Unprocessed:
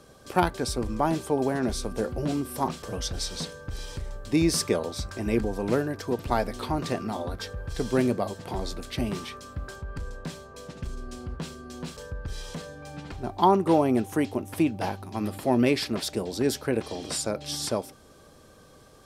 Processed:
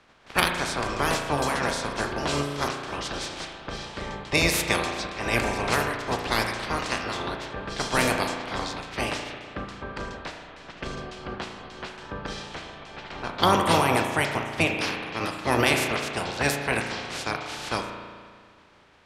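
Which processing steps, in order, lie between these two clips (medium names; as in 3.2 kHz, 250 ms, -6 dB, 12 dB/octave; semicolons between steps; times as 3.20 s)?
spectral peaks clipped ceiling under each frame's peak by 26 dB; level-controlled noise filter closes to 2.3 kHz, open at -20 dBFS; reverberation RT60 1.8 s, pre-delay 35 ms, DRR 3.5 dB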